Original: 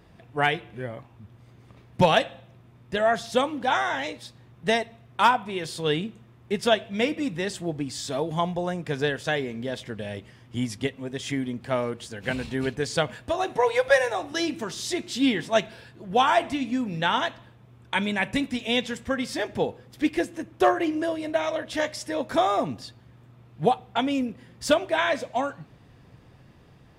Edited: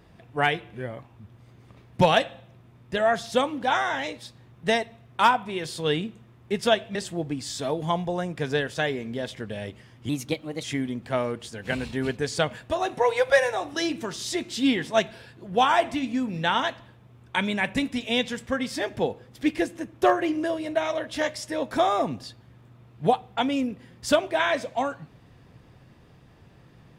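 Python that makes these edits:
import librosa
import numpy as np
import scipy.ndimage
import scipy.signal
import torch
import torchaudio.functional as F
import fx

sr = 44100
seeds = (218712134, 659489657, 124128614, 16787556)

y = fx.edit(x, sr, fx.cut(start_s=6.95, length_s=0.49),
    fx.speed_span(start_s=10.58, length_s=0.64, speed=1.17), tone=tone)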